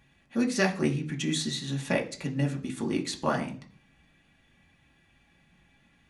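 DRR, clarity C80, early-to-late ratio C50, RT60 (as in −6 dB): 0.0 dB, 17.5 dB, 13.5 dB, 0.45 s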